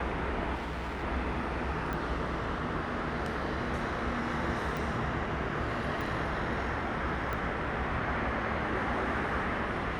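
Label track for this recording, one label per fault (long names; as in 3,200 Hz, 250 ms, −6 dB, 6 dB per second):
0.540000	1.040000	clipping −33 dBFS
1.930000	1.930000	click −22 dBFS
4.770000	4.770000	click
6.010000	6.010000	click
7.330000	7.330000	click −22 dBFS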